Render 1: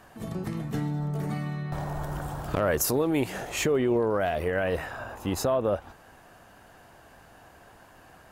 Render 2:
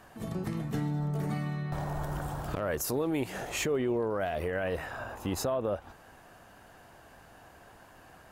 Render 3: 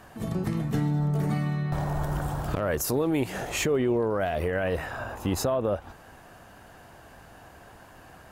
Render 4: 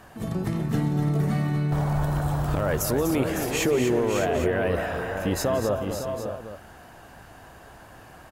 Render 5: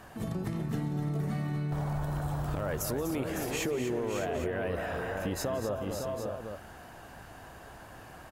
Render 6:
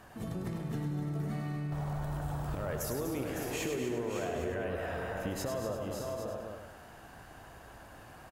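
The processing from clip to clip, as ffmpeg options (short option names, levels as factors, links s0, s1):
-af "alimiter=limit=0.0944:level=0:latency=1:release=217,volume=0.841"
-af "equalizer=f=67:w=0.33:g=3,volume=1.58"
-af "aecho=1:1:179|247|556|608|807:0.178|0.398|0.376|0.299|0.2,volume=1.12"
-af "acompressor=threshold=0.0282:ratio=2.5,volume=0.841"
-af "aecho=1:1:101|202|303|404|505:0.501|0.2|0.0802|0.0321|0.0128,volume=0.631"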